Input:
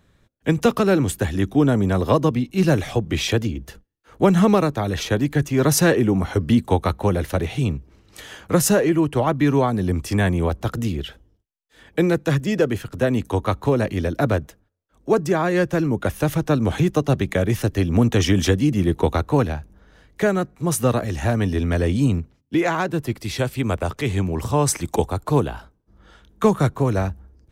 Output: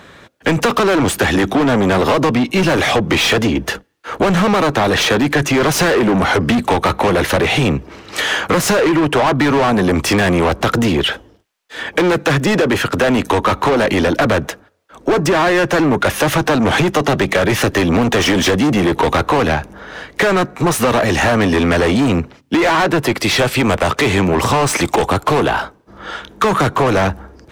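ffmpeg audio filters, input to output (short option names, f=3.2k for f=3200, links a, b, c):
-filter_complex "[0:a]asplit=2[a][b];[b]highpass=f=720:p=1,volume=32dB,asoftclip=type=tanh:threshold=-3dB[c];[a][c]amix=inputs=2:normalize=0,lowpass=f=2.6k:p=1,volume=-6dB,acompressor=threshold=-13dB:ratio=6,volume=1.5dB"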